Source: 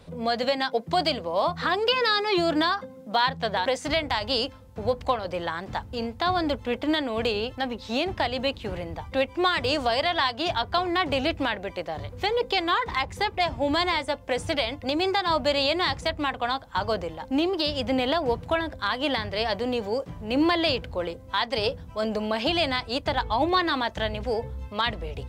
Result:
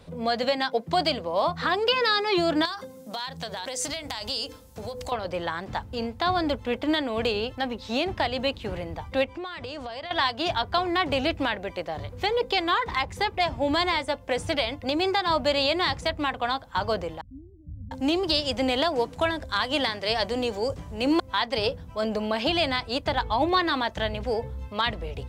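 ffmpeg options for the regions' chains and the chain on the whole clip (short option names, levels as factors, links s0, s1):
-filter_complex "[0:a]asettb=1/sr,asplit=3[s0][s1][s2];[s0]atrim=end=2.654[s3];[s1]atrim=start=2.65:end=5.12,asetpts=PTS-STARTPTS,afade=t=in:d=0.004:c=qsin,afade=t=out:st=2.466:d=0.004:c=qsin,bandreject=f=50:t=h:w=6,bandreject=f=100:t=h:w=6,bandreject=f=150:t=h:w=6,bandreject=f=200:t=h:w=6,bandreject=f=250:t=h:w=6,bandreject=f=300:t=h:w=6,bandreject=f=350:t=h:w=6,bandreject=f=400:t=h:w=6,bandreject=f=450:t=h:w=6,bandreject=f=500:t=h:w=6,acompressor=threshold=0.0282:ratio=6:attack=3.2:release=140:knee=1:detection=peak,bass=f=250:g=-1,treble=f=4000:g=14[s4];[s2]atrim=start=5.116[s5];[s3][s4]acrossfade=d=0.004:c1=hsin:c2=qsin[s6];[s6][s5]acrossfade=d=0.004:c1=qsin:c2=hsin,asettb=1/sr,asplit=3[s7][s8][s9];[s7]atrim=end=9.244[s10];[s8]atrim=start=9.24:end=10.11,asetpts=PTS-STARTPTS,afade=t=in:d=0.004:c=qsin,afade=t=out:st=0.866:d=0.004:c=qsin,highshelf=f=8700:g=-11,acompressor=threshold=0.0251:ratio=8:attack=3.2:release=140:knee=1:detection=peak[s11];[s9]atrim=start=10.106[s12];[s10][s11]acrossfade=d=0.004:c1=hsin:c2=qsin[s13];[s13][s12]acrossfade=d=0.004:c1=qsin:c2=hsin,asettb=1/sr,asplit=3[s14][s15][s16];[s14]atrim=end=17.214[s17];[s15]atrim=start=17.21:end=21.2,asetpts=PTS-STARTPTS,afade=t=in:d=0.004:c=qsin,afade=t=out:st=3.986:d=0.004:c=qsin,equalizer=f=7500:t=o:w=1.4:g=8,acrossover=split=160[s18][s19];[s19]adelay=700[s20];[s18][s20]amix=inputs=2:normalize=0,atrim=end_sample=175959[s21];[s16]atrim=start=21.196[s22];[s17][s21]acrossfade=d=0.004:c1=hsin:c2=qsin[s23];[s23][s22]acrossfade=d=0.004:c1=qsin:c2=hsin"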